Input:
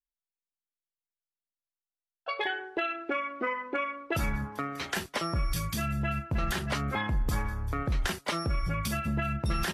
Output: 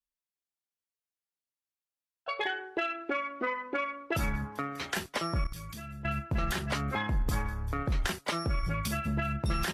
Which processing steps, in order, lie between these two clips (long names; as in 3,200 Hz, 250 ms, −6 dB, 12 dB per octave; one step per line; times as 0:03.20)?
harmonic generator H 3 −25 dB, 6 −44 dB, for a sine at −20 dBFS
0:05.44–0:06.05: output level in coarse steps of 14 dB